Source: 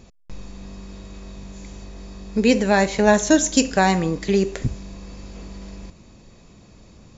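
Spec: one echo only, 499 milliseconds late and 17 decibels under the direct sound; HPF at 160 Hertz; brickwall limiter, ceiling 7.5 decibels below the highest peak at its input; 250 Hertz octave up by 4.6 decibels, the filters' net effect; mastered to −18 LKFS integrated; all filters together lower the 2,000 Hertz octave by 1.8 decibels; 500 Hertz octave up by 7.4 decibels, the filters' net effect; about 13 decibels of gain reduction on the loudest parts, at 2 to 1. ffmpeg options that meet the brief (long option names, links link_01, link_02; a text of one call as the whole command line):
ffmpeg -i in.wav -af "highpass=160,equalizer=frequency=250:width_type=o:gain=4.5,equalizer=frequency=500:width_type=o:gain=8.5,equalizer=frequency=2000:width_type=o:gain=-3,acompressor=threshold=-29dB:ratio=2,alimiter=limit=-18dB:level=0:latency=1,aecho=1:1:499:0.141,volume=13dB" out.wav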